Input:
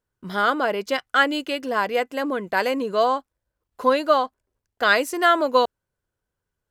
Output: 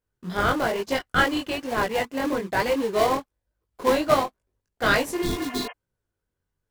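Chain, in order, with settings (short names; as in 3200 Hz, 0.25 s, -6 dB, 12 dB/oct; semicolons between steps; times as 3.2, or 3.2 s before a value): in parallel at -6 dB: sample-rate reducer 1400 Hz, jitter 20%; on the sum: chorus voices 2, 1.1 Hz, delay 20 ms, depth 3 ms; spectral repair 5.21–5.69, 470–3200 Hz before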